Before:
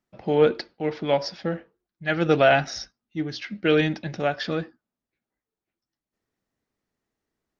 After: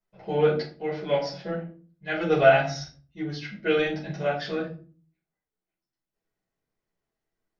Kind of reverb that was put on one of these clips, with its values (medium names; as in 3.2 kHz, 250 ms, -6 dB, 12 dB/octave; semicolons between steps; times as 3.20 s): simulated room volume 240 m³, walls furnished, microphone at 5 m; trim -12.5 dB